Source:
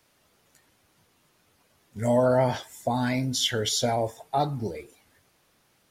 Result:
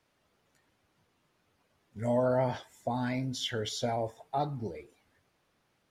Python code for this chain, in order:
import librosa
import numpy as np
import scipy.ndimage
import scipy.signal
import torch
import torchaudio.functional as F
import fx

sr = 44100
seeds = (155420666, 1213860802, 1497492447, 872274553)

y = fx.lowpass(x, sr, hz=3300.0, slope=6)
y = y * librosa.db_to_amplitude(-6.0)